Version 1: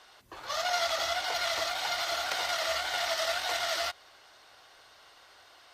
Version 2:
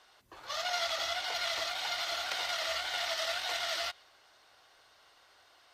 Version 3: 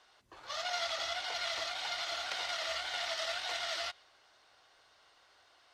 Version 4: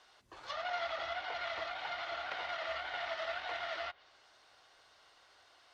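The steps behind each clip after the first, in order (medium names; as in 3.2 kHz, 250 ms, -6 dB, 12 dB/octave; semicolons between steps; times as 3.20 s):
dynamic bell 3.1 kHz, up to +5 dB, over -45 dBFS, Q 0.79; trim -6 dB
low-pass 9.1 kHz 12 dB/octave; trim -2.5 dB
low-pass that closes with the level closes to 2.1 kHz, closed at -37 dBFS; trim +1 dB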